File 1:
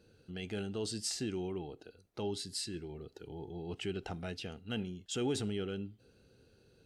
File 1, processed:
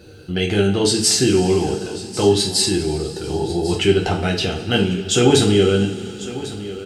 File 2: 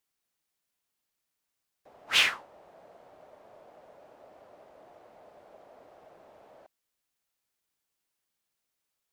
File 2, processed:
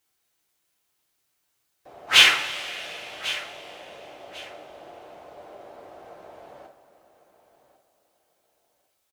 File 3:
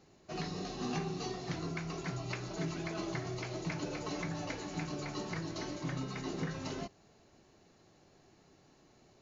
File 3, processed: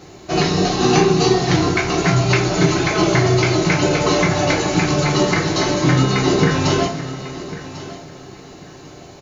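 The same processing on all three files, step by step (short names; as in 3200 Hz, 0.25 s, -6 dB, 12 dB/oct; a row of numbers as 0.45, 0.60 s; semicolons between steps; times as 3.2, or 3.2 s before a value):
feedback echo 1.097 s, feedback 24%, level -15.5 dB; two-slope reverb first 0.33 s, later 3.8 s, from -19 dB, DRR -0.5 dB; normalise peaks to -1.5 dBFS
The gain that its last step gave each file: +18.5, +6.0, +20.0 dB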